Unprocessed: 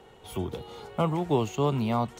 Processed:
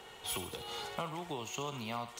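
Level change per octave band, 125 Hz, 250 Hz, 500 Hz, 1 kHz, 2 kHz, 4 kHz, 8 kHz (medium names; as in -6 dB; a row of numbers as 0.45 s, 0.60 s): -17.0 dB, -16.0 dB, -13.5 dB, -9.0 dB, -1.0 dB, +1.5 dB, +4.0 dB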